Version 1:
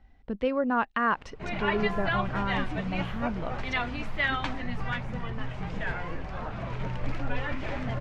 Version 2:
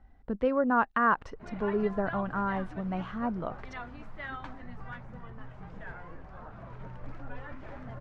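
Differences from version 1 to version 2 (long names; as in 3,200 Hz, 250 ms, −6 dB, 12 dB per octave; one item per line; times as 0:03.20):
background −11.0 dB
master: add high shelf with overshoot 1,900 Hz −6.5 dB, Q 1.5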